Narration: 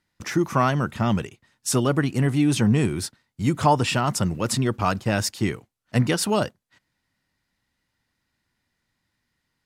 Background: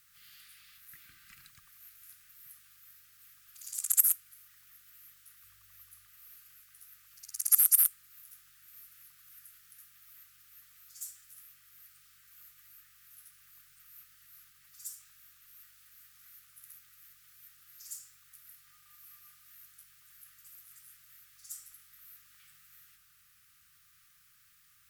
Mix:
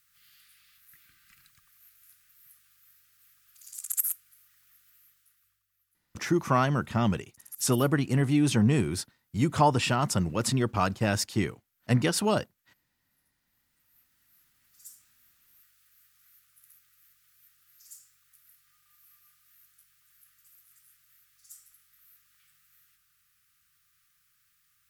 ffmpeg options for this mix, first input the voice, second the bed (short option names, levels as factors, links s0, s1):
-filter_complex "[0:a]adelay=5950,volume=0.668[s0];[1:a]volume=3.55,afade=t=out:st=4.86:d=0.79:silence=0.149624,afade=t=in:st=13.44:d=1.39:silence=0.177828[s1];[s0][s1]amix=inputs=2:normalize=0"